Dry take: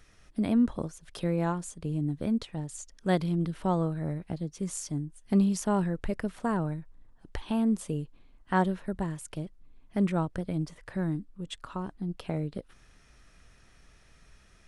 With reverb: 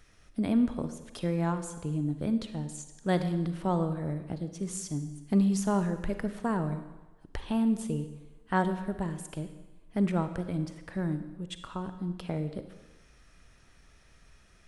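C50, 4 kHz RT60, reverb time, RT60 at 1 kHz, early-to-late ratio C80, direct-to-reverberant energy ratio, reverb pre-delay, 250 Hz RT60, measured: 10.5 dB, 1.0 s, 1.1 s, 1.1 s, 12.0 dB, 9.5 dB, 36 ms, 1.0 s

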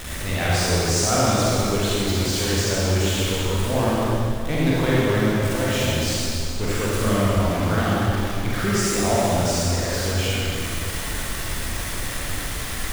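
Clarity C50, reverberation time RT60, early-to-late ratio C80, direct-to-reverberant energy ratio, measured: -5.5 dB, 2.7 s, -3.0 dB, -7.5 dB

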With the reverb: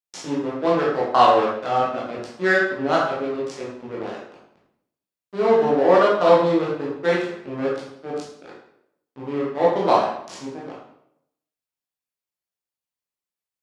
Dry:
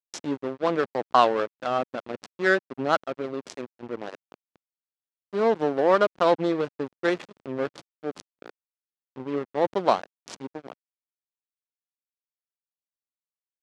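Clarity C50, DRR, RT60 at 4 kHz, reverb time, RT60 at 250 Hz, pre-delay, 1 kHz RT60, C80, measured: 2.0 dB, -5.5 dB, 0.60 s, 0.75 s, 0.80 s, 13 ms, 0.70 s, 5.5 dB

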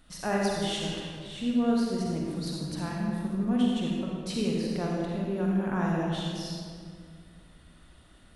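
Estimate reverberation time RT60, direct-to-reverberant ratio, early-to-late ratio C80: 2.1 s, -3.0 dB, 0.0 dB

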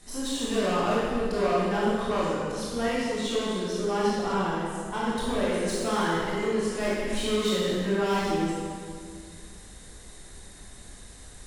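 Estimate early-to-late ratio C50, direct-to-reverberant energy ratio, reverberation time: -3.0 dB, -7.5 dB, 2.0 s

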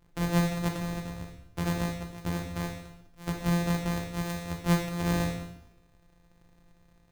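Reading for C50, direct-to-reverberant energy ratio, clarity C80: 6.0 dB, 2.0 dB, 9.0 dB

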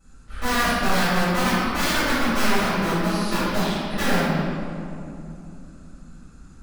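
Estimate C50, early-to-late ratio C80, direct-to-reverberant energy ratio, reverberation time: -5.0 dB, -2.0 dB, -16.5 dB, 2.8 s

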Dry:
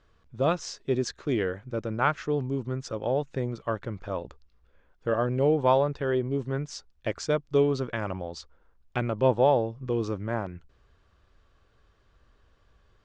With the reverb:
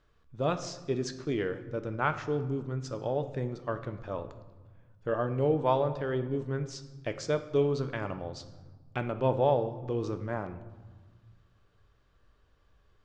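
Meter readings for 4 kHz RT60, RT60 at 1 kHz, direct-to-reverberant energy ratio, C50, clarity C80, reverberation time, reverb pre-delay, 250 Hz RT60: 0.85 s, 1.4 s, 8.5 dB, 12.0 dB, 14.5 dB, 1.4 s, 7 ms, 2.1 s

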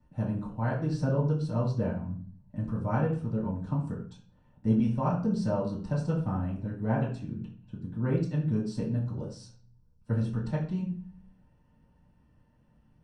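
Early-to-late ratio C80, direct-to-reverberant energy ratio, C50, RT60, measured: 11.0 dB, -8.5 dB, 6.5 dB, 0.40 s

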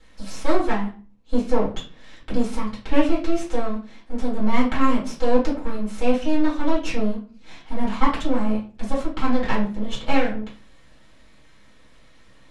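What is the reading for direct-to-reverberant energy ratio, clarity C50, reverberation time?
-7.5 dB, 8.0 dB, 0.40 s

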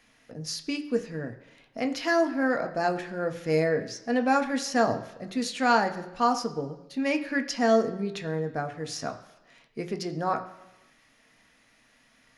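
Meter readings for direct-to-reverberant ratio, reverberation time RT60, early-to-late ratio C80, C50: 5.5 dB, 1.0 s, 15.0 dB, 13.0 dB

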